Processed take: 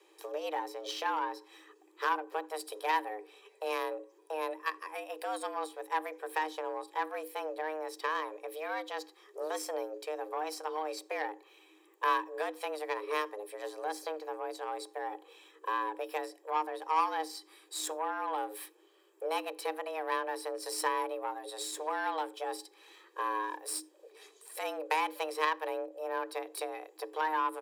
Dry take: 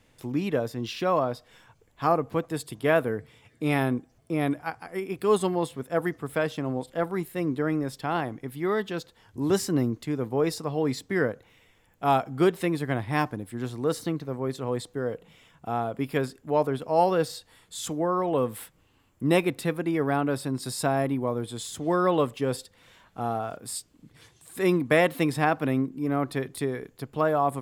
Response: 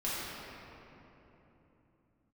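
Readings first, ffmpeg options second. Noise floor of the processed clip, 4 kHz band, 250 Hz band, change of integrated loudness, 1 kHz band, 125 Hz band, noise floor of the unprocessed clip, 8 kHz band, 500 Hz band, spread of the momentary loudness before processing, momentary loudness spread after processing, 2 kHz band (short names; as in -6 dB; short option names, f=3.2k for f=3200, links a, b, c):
-63 dBFS, -4.0 dB, -19.5 dB, -8.5 dB, -3.0 dB, under -40 dB, -63 dBFS, -4.0 dB, -10.5 dB, 10 LU, 10 LU, -5.0 dB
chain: -filter_complex "[0:a]acompressor=threshold=-33dB:ratio=2.5,aecho=1:1:1.4:0.58,aeval=exprs='0.133*(cos(1*acos(clip(val(0)/0.133,-1,1)))-cos(1*PI/2))+0.0237*(cos(3*acos(clip(val(0)/0.133,-1,1)))-cos(3*PI/2))+0.00299*(cos(8*acos(clip(val(0)/0.133,-1,1)))-cos(8*PI/2))':c=same,bandreject=f=60:t=h:w=6,bandreject=f=120:t=h:w=6,bandreject=f=180:t=h:w=6,bandreject=f=240:t=h:w=6,asplit=2[a][b];[1:a]atrim=start_sample=2205,atrim=end_sample=4410[c];[b][c]afir=irnorm=-1:irlink=0,volume=-25.5dB[d];[a][d]amix=inputs=2:normalize=0,afreqshift=310,volume=3.5dB"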